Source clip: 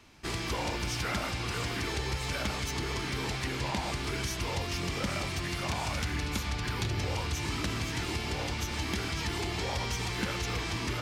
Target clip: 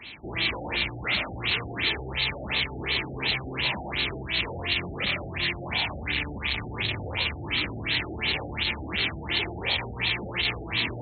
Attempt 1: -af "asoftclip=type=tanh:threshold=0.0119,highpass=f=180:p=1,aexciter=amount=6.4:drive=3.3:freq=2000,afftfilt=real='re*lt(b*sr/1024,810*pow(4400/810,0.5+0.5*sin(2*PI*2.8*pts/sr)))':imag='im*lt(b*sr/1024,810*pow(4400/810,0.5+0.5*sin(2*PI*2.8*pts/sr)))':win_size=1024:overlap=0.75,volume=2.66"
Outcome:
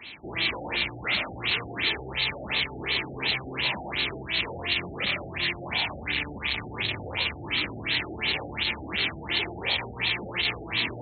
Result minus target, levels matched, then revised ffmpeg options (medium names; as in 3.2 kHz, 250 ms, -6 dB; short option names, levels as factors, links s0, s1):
125 Hz band -4.0 dB
-af "asoftclip=type=tanh:threshold=0.0119,highpass=f=73:p=1,aexciter=amount=6.4:drive=3.3:freq=2000,afftfilt=real='re*lt(b*sr/1024,810*pow(4400/810,0.5+0.5*sin(2*PI*2.8*pts/sr)))':imag='im*lt(b*sr/1024,810*pow(4400/810,0.5+0.5*sin(2*PI*2.8*pts/sr)))':win_size=1024:overlap=0.75,volume=2.66"